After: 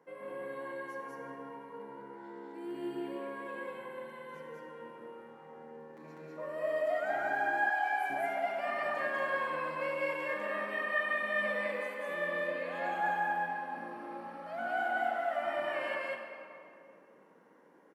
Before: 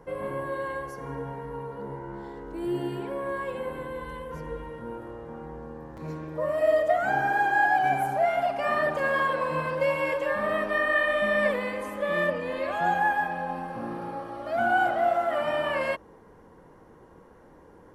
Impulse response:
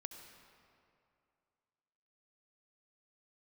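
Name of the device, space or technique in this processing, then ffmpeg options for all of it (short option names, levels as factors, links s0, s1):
stadium PA: -filter_complex "[0:a]highpass=f=190:w=0.5412,highpass=f=190:w=1.3066,equalizer=f=2100:t=o:w=0.9:g=5,aecho=1:1:198.3|239.1:1|0.282[s0];[1:a]atrim=start_sample=2205[s1];[s0][s1]afir=irnorm=-1:irlink=0,asettb=1/sr,asplit=3[s2][s3][s4];[s2]atrim=end=7.694[s5];[s3]atrim=start=7.69:end=8.1,asetpts=PTS-STARTPTS,afade=t=in:d=0.004:c=qsin,afade=t=out:st=0.406:d=0.004:c=qsin,highpass=560[s6];[s4]atrim=start=8.096[s7];[s5][s6]acrossfade=d=0.004:c1=hsin:c2=qsin[s8];[s8][s7]acrossfade=d=0.004:c1=qsin:c2=hsin,volume=0.376"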